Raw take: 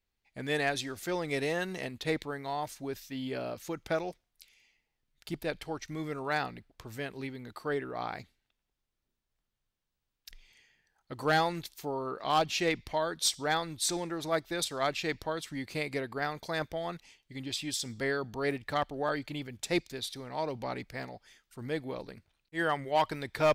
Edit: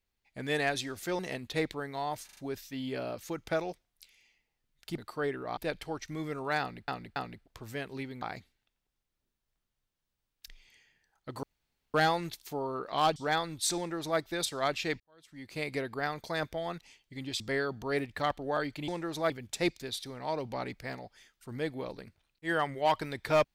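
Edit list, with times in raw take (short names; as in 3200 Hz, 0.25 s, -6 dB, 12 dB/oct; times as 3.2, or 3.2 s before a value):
1.19–1.7 cut
2.76 stutter 0.04 s, 4 plays
6.4–6.68 loop, 3 plays
7.46–8.05 move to 5.37
11.26 insert room tone 0.51 s
12.48–13.35 cut
13.96–14.38 copy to 19.4
15.19–15.86 fade in quadratic
17.59–17.92 cut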